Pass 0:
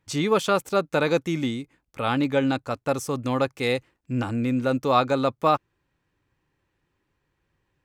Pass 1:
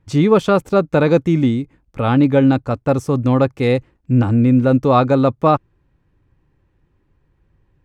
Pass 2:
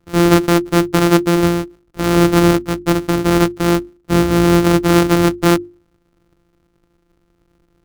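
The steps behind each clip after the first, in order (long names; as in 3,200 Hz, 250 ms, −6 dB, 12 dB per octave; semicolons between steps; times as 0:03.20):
spectral tilt −3 dB per octave; level +5 dB
samples sorted by size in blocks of 256 samples; mains-hum notches 50/100/150/200/250/300/350 Hz; hollow resonant body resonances 330/1,300 Hz, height 10 dB, ringing for 35 ms; level −2 dB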